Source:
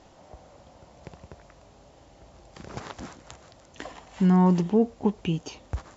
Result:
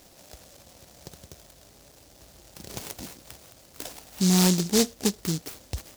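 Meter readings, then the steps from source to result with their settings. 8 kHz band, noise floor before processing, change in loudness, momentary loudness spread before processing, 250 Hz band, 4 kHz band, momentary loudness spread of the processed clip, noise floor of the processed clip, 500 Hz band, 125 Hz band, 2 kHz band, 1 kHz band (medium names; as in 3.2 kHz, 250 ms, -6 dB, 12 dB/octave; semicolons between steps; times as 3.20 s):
no reading, -54 dBFS, -1.0 dB, 22 LU, -2.0 dB, +14.0 dB, 20 LU, -55 dBFS, -2.0 dB, -2.0 dB, +4.5 dB, -5.5 dB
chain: bass shelf 360 Hz -4.5 dB; delay time shaken by noise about 5.4 kHz, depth 0.26 ms; trim +2 dB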